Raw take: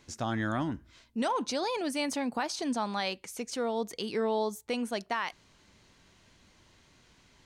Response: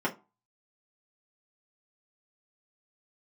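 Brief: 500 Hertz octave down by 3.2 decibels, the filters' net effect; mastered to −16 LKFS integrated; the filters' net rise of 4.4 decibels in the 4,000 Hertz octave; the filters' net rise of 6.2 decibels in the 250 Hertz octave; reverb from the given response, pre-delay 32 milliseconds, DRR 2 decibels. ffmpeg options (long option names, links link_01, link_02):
-filter_complex "[0:a]equalizer=frequency=250:width_type=o:gain=8.5,equalizer=frequency=500:width_type=o:gain=-6.5,equalizer=frequency=4000:width_type=o:gain=5.5,asplit=2[link_01][link_02];[1:a]atrim=start_sample=2205,adelay=32[link_03];[link_02][link_03]afir=irnorm=-1:irlink=0,volume=-11.5dB[link_04];[link_01][link_04]amix=inputs=2:normalize=0,volume=9.5dB"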